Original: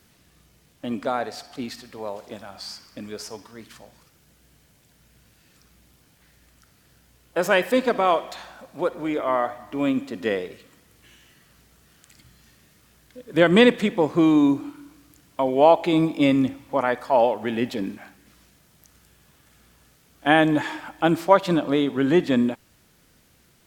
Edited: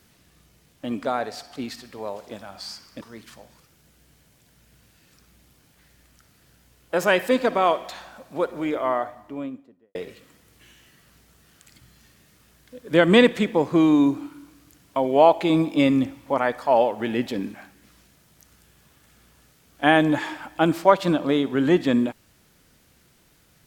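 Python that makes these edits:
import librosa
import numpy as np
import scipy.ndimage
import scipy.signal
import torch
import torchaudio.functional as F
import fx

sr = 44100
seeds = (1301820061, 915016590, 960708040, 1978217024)

y = fx.studio_fade_out(x, sr, start_s=9.11, length_s=1.27)
y = fx.edit(y, sr, fx.cut(start_s=3.01, length_s=0.43), tone=tone)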